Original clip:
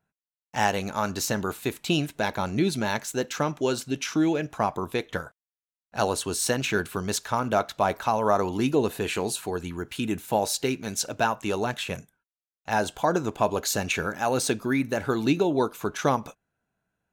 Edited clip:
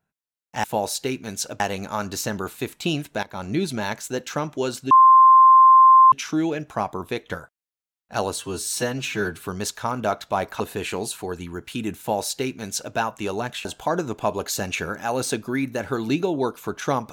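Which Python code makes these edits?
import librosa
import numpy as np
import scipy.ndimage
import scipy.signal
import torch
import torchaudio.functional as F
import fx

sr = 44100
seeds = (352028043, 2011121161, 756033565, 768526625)

y = fx.edit(x, sr, fx.fade_in_from(start_s=2.27, length_s=0.27, floor_db=-17.5),
    fx.insert_tone(at_s=3.95, length_s=1.21, hz=1050.0, db=-8.0),
    fx.stretch_span(start_s=6.19, length_s=0.7, factor=1.5),
    fx.cut(start_s=8.08, length_s=0.76),
    fx.duplicate(start_s=10.23, length_s=0.96, to_s=0.64),
    fx.cut(start_s=11.89, length_s=0.93), tone=tone)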